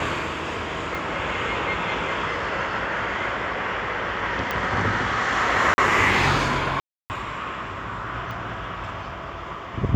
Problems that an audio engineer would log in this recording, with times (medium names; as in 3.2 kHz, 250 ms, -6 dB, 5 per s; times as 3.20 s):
0.95 s: pop
4.51 s: pop -11 dBFS
5.74–5.78 s: dropout 40 ms
6.80–7.10 s: dropout 299 ms
8.31 s: pop